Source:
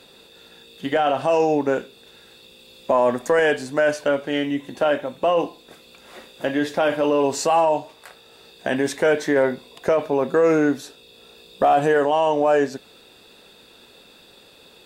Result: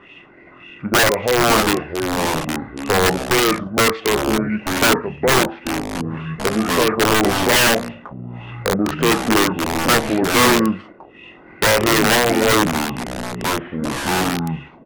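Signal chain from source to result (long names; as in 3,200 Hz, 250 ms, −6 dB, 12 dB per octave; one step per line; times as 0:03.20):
pitch shifter −5 semitones
in parallel at −7.5 dB: soft clipping −24 dBFS, distortion −7 dB
on the sum: auto-filter low-pass sine 1.8 Hz 570–2,800 Hz
wrap-around overflow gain 9 dB
delay with pitch and tempo change per echo 250 ms, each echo −5 semitones, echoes 2, each echo −6 dB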